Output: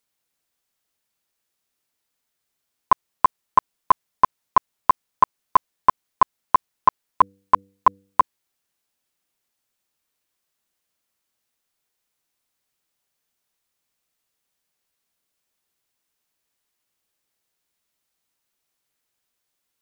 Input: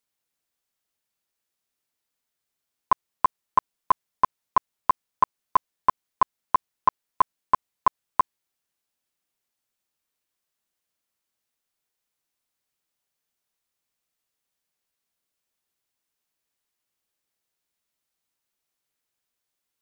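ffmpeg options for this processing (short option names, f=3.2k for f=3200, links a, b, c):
-filter_complex "[0:a]asplit=3[a][b][c];[a]afade=t=out:st=7.21:d=0.02[d];[b]bandreject=f=97.9:t=h:w=4,bandreject=f=195.8:t=h:w=4,bandreject=f=293.7:t=h:w=4,bandreject=f=391.6:t=h:w=4,bandreject=f=489.5:t=h:w=4,afade=t=in:st=7.21:d=0.02,afade=t=out:st=8.2:d=0.02[e];[c]afade=t=in:st=8.2:d=0.02[f];[d][e][f]amix=inputs=3:normalize=0,volume=4.5dB"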